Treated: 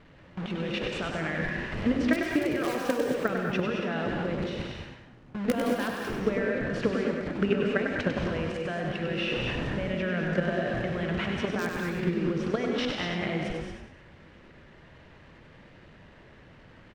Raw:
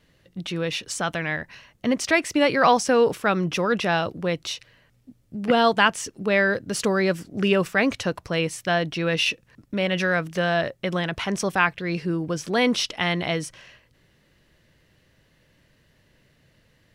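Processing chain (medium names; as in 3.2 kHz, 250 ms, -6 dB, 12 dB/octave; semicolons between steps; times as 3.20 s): one-bit delta coder 64 kbps, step -28 dBFS; low-pass 2.1 kHz 12 dB/octave; in parallel at -6 dB: integer overflow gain 9.5 dB; on the sum: compression 20:1, threshold -19 dBFS, peak gain reduction 9.5 dB; gate with hold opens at -28 dBFS; dynamic bell 900 Hz, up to -7 dB, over -41 dBFS, Q 2.1; level held to a coarse grid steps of 11 dB; on a send: frequency-shifting echo 98 ms, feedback 40%, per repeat +34 Hz, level -6 dB; on the sum: gated-style reverb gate 250 ms rising, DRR 2.5 dB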